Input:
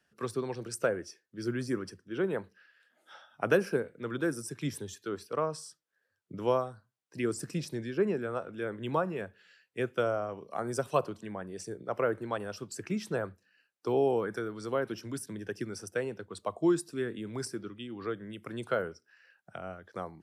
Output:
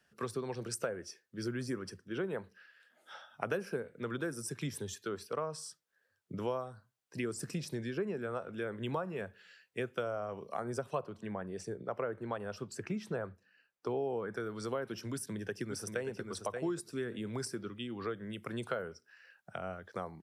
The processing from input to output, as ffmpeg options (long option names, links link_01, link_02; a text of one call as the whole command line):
ffmpeg -i in.wav -filter_complex "[0:a]asettb=1/sr,asplit=3[link_01][link_02][link_03];[link_01]atrim=end=10.644[link_04];[link_02]atrim=start=10.64:end=14.4,asetpts=PTS-STARTPTS,afade=type=in:duration=0.004:curve=qsin,afade=type=out:start_time=3.756:duration=0.004:curve=qsin,highshelf=frequency=3900:gain=-9.5[link_05];[link_03]atrim=start=14.396[link_06];[link_04][link_05]acrossfade=duration=0.004:curve1=hsin:curve2=qsin[link_07];[link_07][link_06]acrossfade=duration=0.004:curve1=qsin:curve2=hsin,asplit=2[link_08][link_09];[link_09]afade=type=in:start_time=15.12:duration=0.01,afade=type=out:start_time=16.22:duration=0.01,aecho=0:1:580|1160:0.473151|0.0473151[link_10];[link_08][link_10]amix=inputs=2:normalize=0,equalizer=frequency=310:width_type=o:width=0.29:gain=-5,acompressor=threshold=-37dB:ratio=3,volume=2dB" out.wav